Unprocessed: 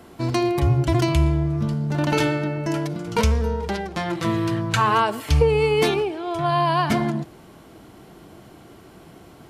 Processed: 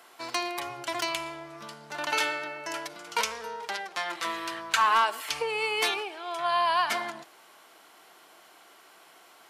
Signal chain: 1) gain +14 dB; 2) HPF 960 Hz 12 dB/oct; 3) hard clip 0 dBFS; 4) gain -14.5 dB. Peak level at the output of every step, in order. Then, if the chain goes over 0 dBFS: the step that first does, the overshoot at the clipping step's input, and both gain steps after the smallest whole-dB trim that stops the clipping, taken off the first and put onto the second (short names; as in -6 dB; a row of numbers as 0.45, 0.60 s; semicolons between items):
+6.5, +4.0, 0.0, -14.5 dBFS; step 1, 4.0 dB; step 1 +10 dB, step 4 -10.5 dB